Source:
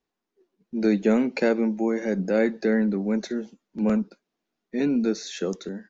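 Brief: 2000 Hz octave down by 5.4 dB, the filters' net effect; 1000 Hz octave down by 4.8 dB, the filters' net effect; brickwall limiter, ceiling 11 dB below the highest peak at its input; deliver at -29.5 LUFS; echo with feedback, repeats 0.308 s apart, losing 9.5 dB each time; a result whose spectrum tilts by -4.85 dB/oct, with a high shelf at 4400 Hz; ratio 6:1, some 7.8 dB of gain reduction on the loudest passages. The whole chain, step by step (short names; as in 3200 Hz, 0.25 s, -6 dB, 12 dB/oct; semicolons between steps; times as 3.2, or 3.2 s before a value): bell 1000 Hz -6 dB; bell 2000 Hz -6 dB; high shelf 4400 Hz +6 dB; compressor 6:1, threshold -25 dBFS; limiter -27 dBFS; feedback echo 0.308 s, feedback 33%, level -9.5 dB; gain +6 dB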